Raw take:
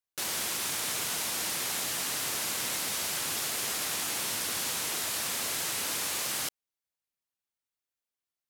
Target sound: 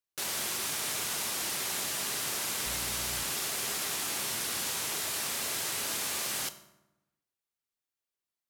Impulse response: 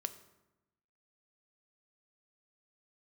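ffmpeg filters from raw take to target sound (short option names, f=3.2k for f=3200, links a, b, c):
-filter_complex "[0:a]asettb=1/sr,asplit=3[a][b][c];[a]atrim=end=2.664[d];[b]atrim=start=2.66:end=3.23,asetpts=PTS-STARTPTS,afade=t=in:d=0.004:c=qsin,afade=t=out:st=0.566:d=0.004:c=qsin,aeval=exprs='val(0)+0.00794*(sin(2*PI*60*n/s)+sin(2*PI*2*60*n/s)/2+sin(2*PI*3*60*n/s)/3+sin(2*PI*4*60*n/s)/4+sin(2*PI*5*60*n/s)/5)':c=same[e];[c]atrim=start=3.226[f];[d][e]acrossfade=d=0.004:c1=hsin:c2=qsin[g];[g][f]acrossfade=d=0.004:c1=qsin:c2=hsin[h];[1:a]atrim=start_sample=2205[i];[h][i]afir=irnorm=-1:irlink=0"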